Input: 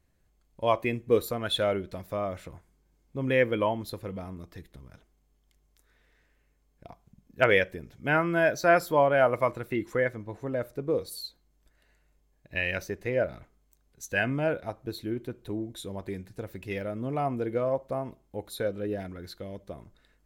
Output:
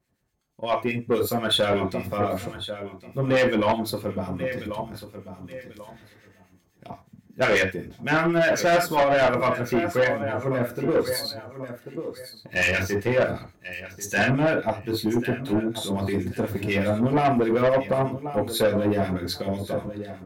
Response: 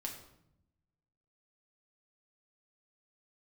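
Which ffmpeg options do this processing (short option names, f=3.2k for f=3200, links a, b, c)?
-filter_complex "[0:a]asettb=1/sr,asplit=3[a][b][c];[a]atrim=end=10.934[d];[b]atrim=start=10.93:end=13.27,asetpts=PTS-STARTPTS,afade=t=in:d=0.004:c=qsin,afade=t=out:st=2.336:d=0.004:c=qsin,aeval=exprs='if(lt(val(0),0),0.708*val(0),val(0))':c=same[e];[c]atrim=start=13.266[f];[d][e]acrossfade=d=0.004:c1=hsin:c2=qsin[g];[g][f]acrossfade=d=0.004:c1=qsin:c2=hsin,highpass=81,aecho=1:1:1089|2178:0.178|0.032,dynaudnorm=f=450:g=5:m=13dB[h];[1:a]atrim=start_sample=2205,atrim=end_sample=3969[i];[h][i]afir=irnorm=-1:irlink=0,acrossover=split=1400[j][k];[j]aeval=exprs='val(0)*(1-0.7/2+0.7/2*cos(2*PI*8.1*n/s))':c=same[l];[k]aeval=exprs='val(0)*(1-0.7/2-0.7/2*cos(2*PI*8.1*n/s))':c=same[m];[l][m]amix=inputs=2:normalize=0,asoftclip=type=tanh:threshold=-20.5dB,volume=5dB"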